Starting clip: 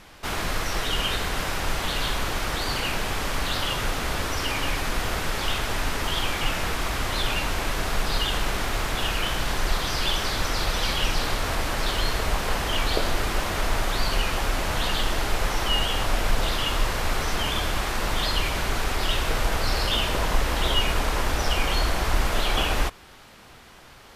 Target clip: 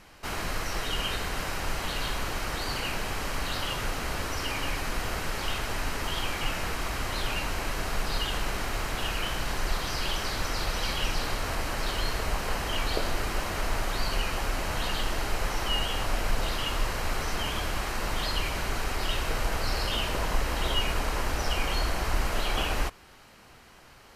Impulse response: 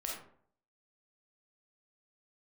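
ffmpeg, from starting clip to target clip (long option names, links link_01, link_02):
-af "bandreject=frequency=3500:width=11,volume=-4.5dB"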